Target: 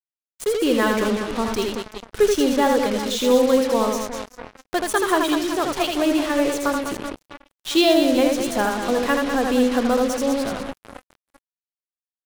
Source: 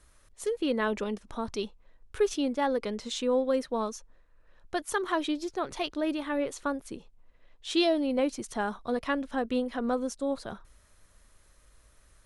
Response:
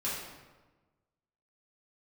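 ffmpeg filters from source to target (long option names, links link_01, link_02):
-af "aecho=1:1:80|200|380|650|1055:0.631|0.398|0.251|0.158|0.1,acrusher=bits=5:mix=0:aa=0.5,volume=8dB"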